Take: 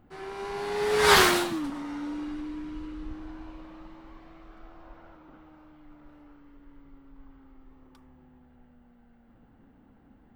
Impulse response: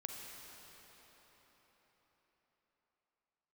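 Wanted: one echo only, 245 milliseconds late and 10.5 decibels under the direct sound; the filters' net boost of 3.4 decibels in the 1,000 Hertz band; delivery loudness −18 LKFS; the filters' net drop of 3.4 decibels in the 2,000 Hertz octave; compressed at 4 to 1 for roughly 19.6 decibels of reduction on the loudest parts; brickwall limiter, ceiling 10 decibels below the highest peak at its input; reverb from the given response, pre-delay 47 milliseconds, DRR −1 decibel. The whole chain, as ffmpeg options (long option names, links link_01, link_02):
-filter_complex "[0:a]equalizer=frequency=1000:width_type=o:gain=6,equalizer=frequency=2000:width_type=o:gain=-7,acompressor=threshold=-38dB:ratio=4,alimiter=level_in=10dB:limit=-24dB:level=0:latency=1,volume=-10dB,aecho=1:1:245:0.299,asplit=2[link_01][link_02];[1:a]atrim=start_sample=2205,adelay=47[link_03];[link_02][link_03]afir=irnorm=-1:irlink=0,volume=2.5dB[link_04];[link_01][link_04]amix=inputs=2:normalize=0,volume=23dB"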